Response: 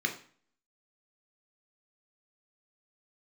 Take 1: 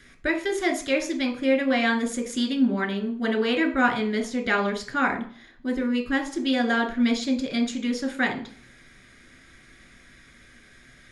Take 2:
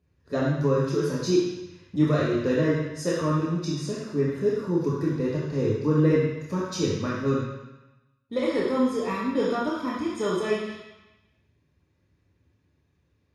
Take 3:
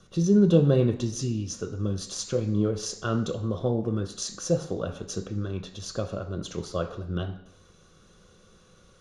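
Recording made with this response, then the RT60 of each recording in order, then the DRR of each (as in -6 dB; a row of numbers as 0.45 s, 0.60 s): 1; 0.45 s, 1.0 s, 0.70 s; 3.0 dB, -5.5 dB, 5.0 dB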